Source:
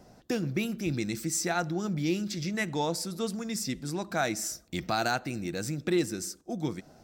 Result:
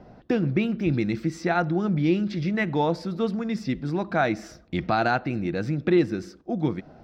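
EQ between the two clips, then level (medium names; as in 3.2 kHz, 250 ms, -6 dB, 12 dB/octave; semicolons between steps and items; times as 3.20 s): distance through air 330 m; +7.5 dB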